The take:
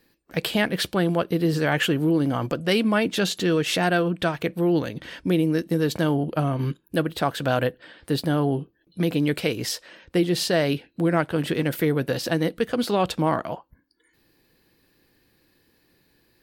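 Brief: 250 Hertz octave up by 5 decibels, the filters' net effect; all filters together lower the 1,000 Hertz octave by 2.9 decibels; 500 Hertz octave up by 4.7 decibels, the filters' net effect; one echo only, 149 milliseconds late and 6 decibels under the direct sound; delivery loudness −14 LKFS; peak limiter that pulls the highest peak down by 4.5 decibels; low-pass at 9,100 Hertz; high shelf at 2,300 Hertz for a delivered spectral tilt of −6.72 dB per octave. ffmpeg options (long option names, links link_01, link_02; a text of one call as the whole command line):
ffmpeg -i in.wav -af "lowpass=9100,equalizer=frequency=250:width_type=o:gain=5.5,equalizer=frequency=500:width_type=o:gain=6,equalizer=frequency=1000:width_type=o:gain=-7,highshelf=frequency=2300:gain=-6,alimiter=limit=-11dB:level=0:latency=1,aecho=1:1:149:0.501,volume=7dB" out.wav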